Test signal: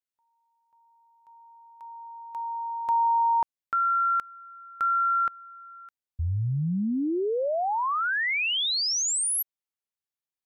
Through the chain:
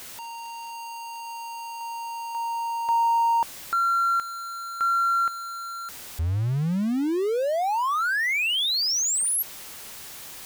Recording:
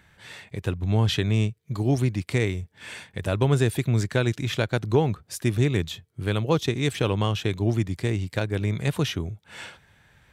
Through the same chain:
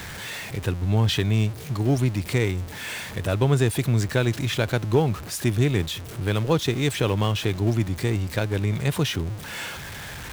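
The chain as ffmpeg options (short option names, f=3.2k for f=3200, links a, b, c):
-af "aeval=exprs='val(0)+0.5*0.0282*sgn(val(0))':c=same"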